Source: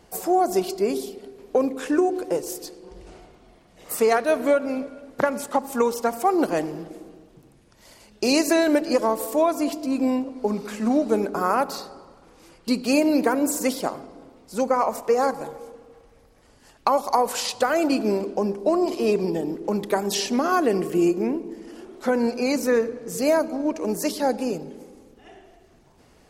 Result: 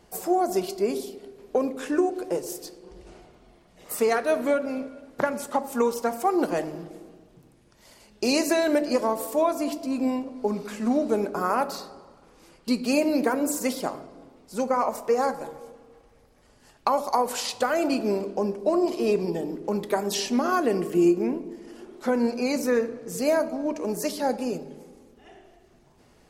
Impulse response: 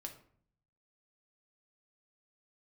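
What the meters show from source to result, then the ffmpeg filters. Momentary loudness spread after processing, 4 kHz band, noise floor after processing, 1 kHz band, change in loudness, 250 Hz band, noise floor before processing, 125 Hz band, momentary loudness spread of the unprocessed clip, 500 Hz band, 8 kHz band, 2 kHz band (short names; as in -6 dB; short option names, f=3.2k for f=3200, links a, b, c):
13 LU, -2.5 dB, -58 dBFS, -3.0 dB, -2.5 dB, -2.5 dB, -55 dBFS, -2.5 dB, 12 LU, -2.5 dB, -3.0 dB, -2.5 dB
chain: -filter_complex "[0:a]asplit=2[a][b];[1:a]atrim=start_sample=2205[c];[b][c]afir=irnorm=-1:irlink=0,volume=1dB[d];[a][d]amix=inputs=2:normalize=0,volume=-7dB"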